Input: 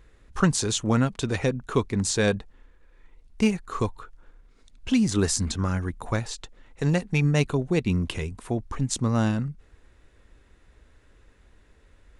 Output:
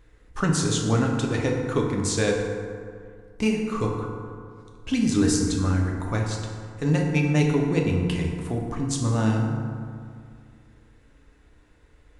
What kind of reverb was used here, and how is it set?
feedback delay network reverb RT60 2.2 s, low-frequency decay 1.05×, high-frequency decay 0.45×, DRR −0.5 dB
level −2.5 dB

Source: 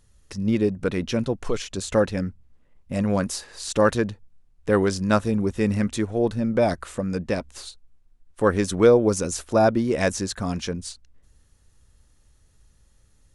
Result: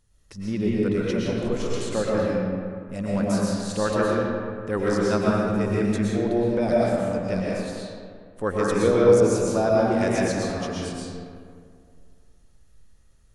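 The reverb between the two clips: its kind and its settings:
comb and all-pass reverb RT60 2.2 s, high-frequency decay 0.5×, pre-delay 80 ms, DRR −5.5 dB
level −7 dB

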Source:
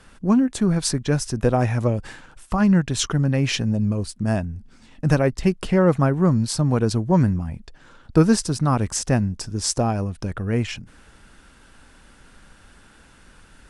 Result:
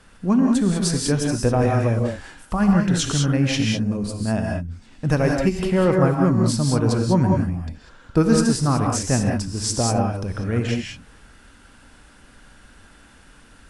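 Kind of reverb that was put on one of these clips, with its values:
reverb whose tail is shaped and stops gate 220 ms rising, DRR 0.5 dB
level −1.5 dB

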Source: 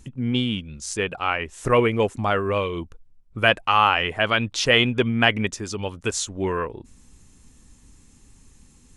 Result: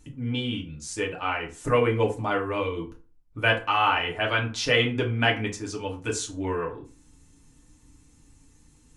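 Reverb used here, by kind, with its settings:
feedback delay network reverb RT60 0.36 s, low-frequency decay 1.05×, high-frequency decay 0.65×, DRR −1.5 dB
level −7.5 dB

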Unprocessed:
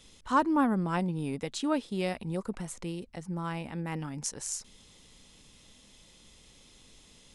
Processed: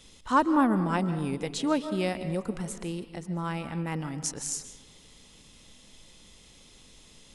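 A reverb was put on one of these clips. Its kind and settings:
comb and all-pass reverb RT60 1.2 s, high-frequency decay 0.45×, pre-delay 105 ms, DRR 11 dB
level +2.5 dB

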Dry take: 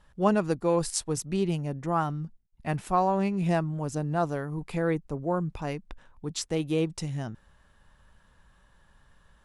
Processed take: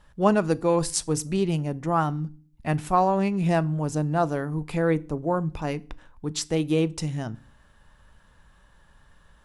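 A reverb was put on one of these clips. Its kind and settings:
feedback delay network reverb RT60 0.4 s, low-frequency decay 1.55×, high-frequency decay 0.9×, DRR 16.5 dB
level +3.5 dB

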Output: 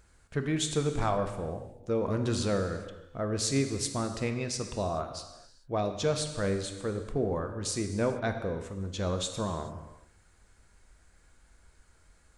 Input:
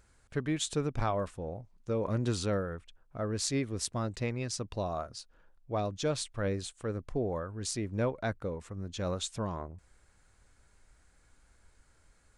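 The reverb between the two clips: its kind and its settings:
reverb whose tail is shaped and stops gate 460 ms falling, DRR 6 dB
level +2 dB

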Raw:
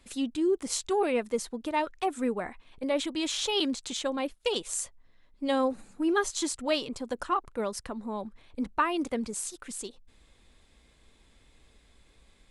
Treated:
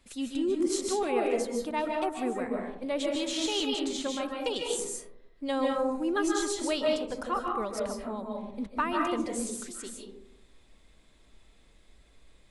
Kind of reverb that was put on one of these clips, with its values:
comb and all-pass reverb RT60 0.79 s, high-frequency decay 0.3×, pre-delay 110 ms, DRR −0.5 dB
level −3.5 dB

